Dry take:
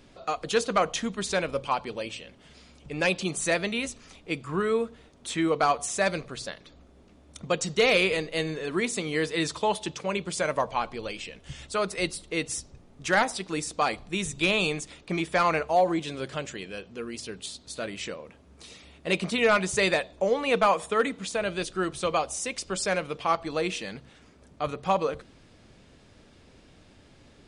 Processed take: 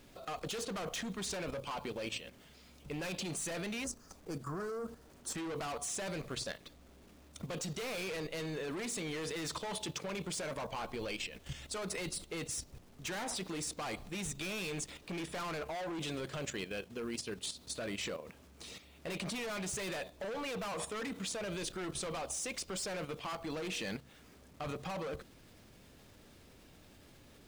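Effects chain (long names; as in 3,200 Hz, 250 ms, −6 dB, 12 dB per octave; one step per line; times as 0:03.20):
gain into a clipping stage and back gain 30 dB
0:03.84–0:05.36: flat-topped bell 2,800 Hz −15.5 dB 1.2 octaves
bit reduction 10 bits
output level in coarse steps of 10 dB
level +1 dB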